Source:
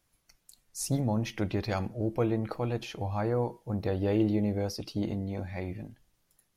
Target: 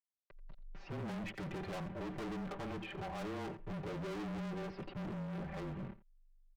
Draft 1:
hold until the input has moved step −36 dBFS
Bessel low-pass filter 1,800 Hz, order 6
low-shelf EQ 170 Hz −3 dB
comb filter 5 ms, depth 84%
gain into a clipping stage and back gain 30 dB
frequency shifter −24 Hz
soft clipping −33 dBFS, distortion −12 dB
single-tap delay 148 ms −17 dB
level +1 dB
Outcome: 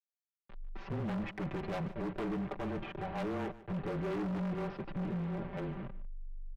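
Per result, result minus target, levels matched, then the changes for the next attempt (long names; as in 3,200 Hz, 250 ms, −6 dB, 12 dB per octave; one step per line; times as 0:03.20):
echo 62 ms late; hold until the input has moved: distortion +9 dB; gain into a clipping stage and back: distortion −6 dB
change: single-tap delay 86 ms −17 dB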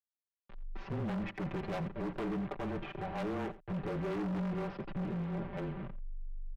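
hold until the input has moved: distortion +9 dB; gain into a clipping stage and back: distortion −6 dB
change: hold until the input has moved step −44 dBFS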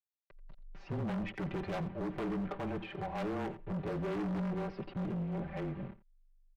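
gain into a clipping stage and back: distortion −5 dB
change: gain into a clipping stage and back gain 40.5 dB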